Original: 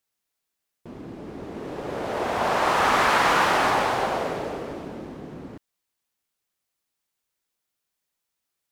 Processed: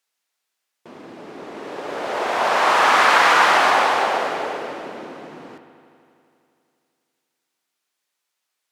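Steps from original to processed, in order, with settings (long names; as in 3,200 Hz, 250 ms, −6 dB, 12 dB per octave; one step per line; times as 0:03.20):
meter weighting curve A
delay with a low-pass on its return 82 ms, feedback 81%, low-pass 3,300 Hz, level −12 dB
level +5 dB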